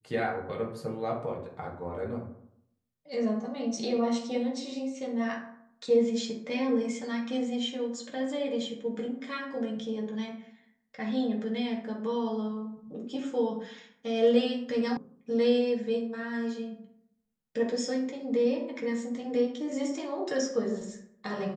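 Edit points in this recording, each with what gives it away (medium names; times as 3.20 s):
14.97 s: sound stops dead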